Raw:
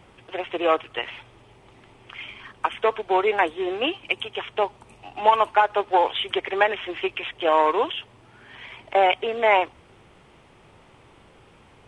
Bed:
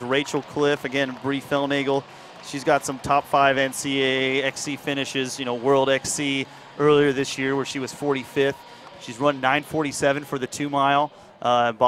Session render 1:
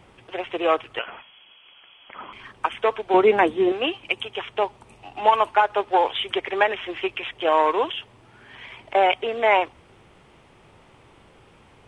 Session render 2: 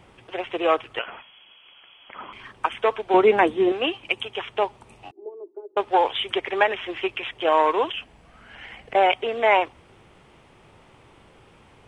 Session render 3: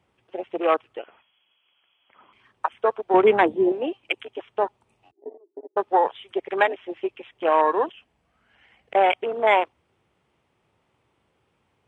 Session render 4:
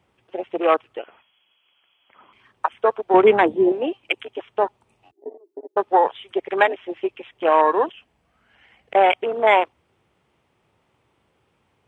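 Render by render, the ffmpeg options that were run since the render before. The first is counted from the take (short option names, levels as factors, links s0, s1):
-filter_complex "[0:a]asettb=1/sr,asplit=3[s0][s1][s2];[s0]atrim=end=0.994[s3];[s1]atrim=start=0.99:end=2.33,asetpts=PTS-STARTPTS,afade=t=in:d=0.004:c=qsin,afade=t=out:st=1.336:d=0.004:c=qsin,lowpass=f=2900:t=q:w=0.5098,lowpass=f=2900:t=q:w=0.6013,lowpass=f=2900:t=q:w=0.9,lowpass=f=2900:t=q:w=2.563,afreqshift=-3400[s4];[s2]atrim=start=2.326[s5];[s3][s4]acrossfade=d=0.004:c1=hsin:c2=qsin[s6];[s6][s5]acrossfade=d=0.004:c1=qsin:c2=hsin,asettb=1/sr,asplit=3[s7][s8][s9];[s7]atrim=end=3.144[s10];[s8]atrim=start=3.14:end=3.72,asetpts=PTS-STARTPTS,afade=t=in:d=0.004:c=qsin,afade=t=out:st=0.576:d=0.004:c=qsin,equalizer=f=200:w=0.72:g=14[s11];[s9]atrim=start=3.716[s12];[s10][s11]acrossfade=d=0.004:c1=hsin:c2=qsin[s13];[s13][s12]acrossfade=d=0.004:c1=qsin:c2=hsin"
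-filter_complex "[0:a]asettb=1/sr,asplit=3[s0][s1][s2];[s0]atrim=end=5.114[s3];[s1]atrim=start=5.11:end=5.77,asetpts=PTS-STARTPTS,afade=t=in:d=0.004:c=qsin,afade=t=out:st=0.656:d=0.004:c=qsin,asuperpass=centerf=370:order=4:qfactor=4.3[s4];[s2]atrim=start=5.766[s5];[s3][s4]acrossfade=d=0.004:c1=hsin:c2=qsin[s6];[s6][s5]acrossfade=d=0.004:c1=qsin:c2=hsin,asplit=3[s7][s8][s9];[s7]afade=t=out:st=7.92:d=0.02[s10];[s8]afreqshift=-170,afade=t=in:st=7.92:d=0.02,afade=t=out:st=8.94:d=0.02[s11];[s9]afade=t=in:st=8.94:d=0.02[s12];[s10][s11][s12]amix=inputs=3:normalize=0"
-af "highpass=f=55:w=0.5412,highpass=f=55:w=1.3066,afwtdn=0.0501"
-af "volume=1.41,alimiter=limit=0.708:level=0:latency=1"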